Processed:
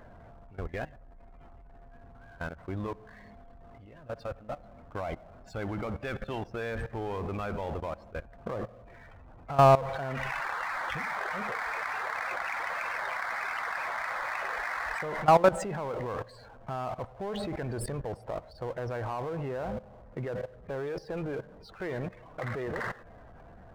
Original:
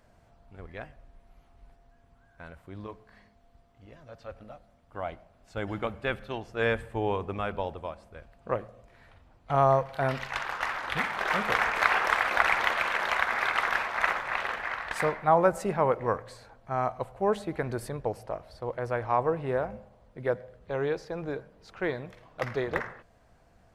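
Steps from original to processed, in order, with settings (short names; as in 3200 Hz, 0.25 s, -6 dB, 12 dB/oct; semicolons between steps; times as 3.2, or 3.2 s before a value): loudest bins only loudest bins 64; power-law curve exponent 0.7; level quantiser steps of 17 dB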